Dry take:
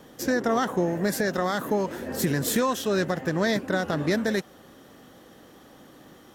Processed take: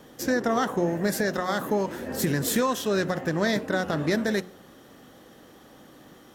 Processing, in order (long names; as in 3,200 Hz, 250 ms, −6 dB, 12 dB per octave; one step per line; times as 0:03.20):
hum removal 90.51 Hz, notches 15
on a send: convolution reverb RT60 0.55 s, pre-delay 4 ms, DRR 22 dB